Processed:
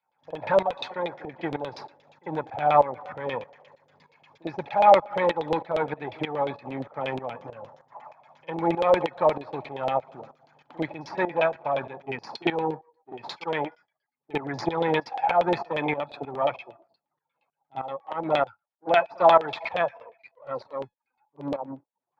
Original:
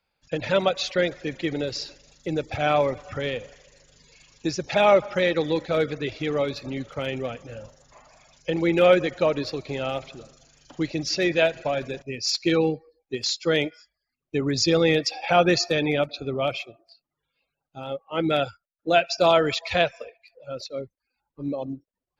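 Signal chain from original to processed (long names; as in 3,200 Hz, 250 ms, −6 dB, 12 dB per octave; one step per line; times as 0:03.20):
gain on one half-wave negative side −7 dB
high-pass filter 110 Hz 24 dB per octave
parametric band 880 Hz +14 dB 0.58 octaves
notch filter 2,800 Hz, Q 9.5
in parallel at 0 dB: downward compressor, threshold −28 dBFS, peak gain reduction 17.5 dB
on the sum: auto-filter low-pass saw down 8.5 Hz 510–3,400 Hz
tuned comb filter 850 Hz, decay 0.19 s, harmonics all, mix 40%
backwards echo 48 ms −21.5 dB
shaped tremolo saw up 3.2 Hz, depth 80%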